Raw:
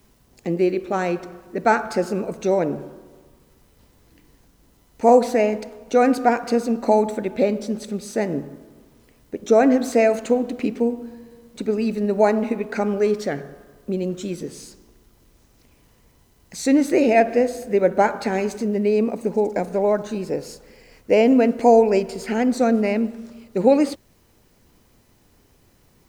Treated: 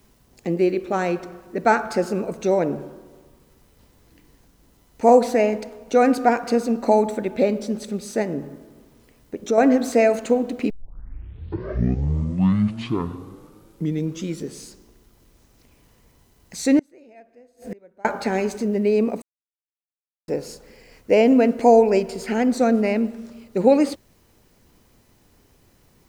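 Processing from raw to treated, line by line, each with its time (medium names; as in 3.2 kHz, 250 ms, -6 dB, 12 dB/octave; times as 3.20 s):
8.22–9.58 s: compression 1.5:1, threshold -25 dBFS
10.70 s: tape start 3.87 s
16.79–18.05 s: inverted gate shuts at -21 dBFS, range -32 dB
19.22–20.28 s: mute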